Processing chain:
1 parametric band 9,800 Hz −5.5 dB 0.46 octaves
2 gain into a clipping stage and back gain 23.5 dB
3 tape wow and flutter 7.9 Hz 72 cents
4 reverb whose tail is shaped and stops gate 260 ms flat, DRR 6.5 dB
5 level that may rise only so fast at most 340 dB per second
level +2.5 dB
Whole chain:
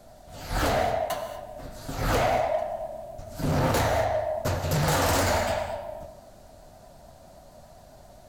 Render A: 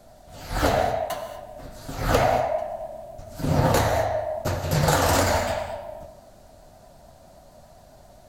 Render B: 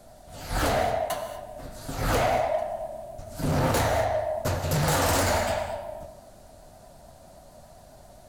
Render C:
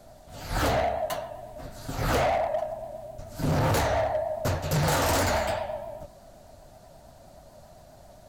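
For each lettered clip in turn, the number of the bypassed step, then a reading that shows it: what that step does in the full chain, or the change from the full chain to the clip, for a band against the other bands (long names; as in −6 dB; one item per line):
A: 2, distortion level −9 dB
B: 1, 8 kHz band +1.5 dB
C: 4, change in crest factor −4.0 dB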